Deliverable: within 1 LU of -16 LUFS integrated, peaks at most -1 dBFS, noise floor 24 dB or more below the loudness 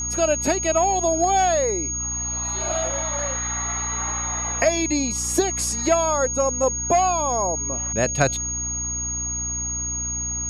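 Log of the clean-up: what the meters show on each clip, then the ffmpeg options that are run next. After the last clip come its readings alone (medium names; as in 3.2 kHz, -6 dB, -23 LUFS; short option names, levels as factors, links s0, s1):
hum 60 Hz; highest harmonic 300 Hz; hum level -32 dBFS; steady tone 6.6 kHz; tone level -25 dBFS; loudness -21.5 LUFS; peak level -4.0 dBFS; loudness target -16.0 LUFS
-> -af "bandreject=f=60:t=h:w=6,bandreject=f=120:t=h:w=6,bandreject=f=180:t=h:w=6,bandreject=f=240:t=h:w=6,bandreject=f=300:t=h:w=6"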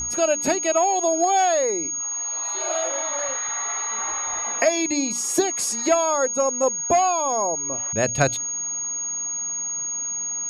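hum not found; steady tone 6.6 kHz; tone level -25 dBFS
-> -af "bandreject=f=6600:w=30"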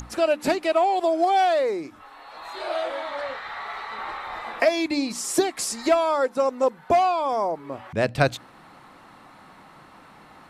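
steady tone not found; loudness -24.0 LUFS; peak level -4.0 dBFS; loudness target -16.0 LUFS
-> -af "volume=2.51,alimiter=limit=0.891:level=0:latency=1"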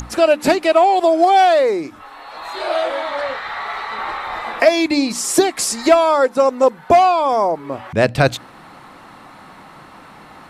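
loudness -16.0 LUFS; peak level -1.0 dBFS; noise floor -42 dBFS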